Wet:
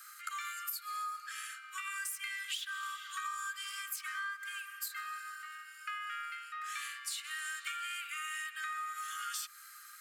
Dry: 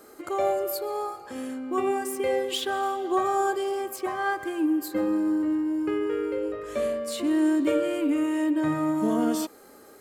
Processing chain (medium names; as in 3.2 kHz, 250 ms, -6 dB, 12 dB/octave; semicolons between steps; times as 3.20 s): Chebyshev high-pass 1.2 kHz, order 10; compression 16:1, threshold -40 dBFS, peak gain reduction 14.5 dB; trim +4 dB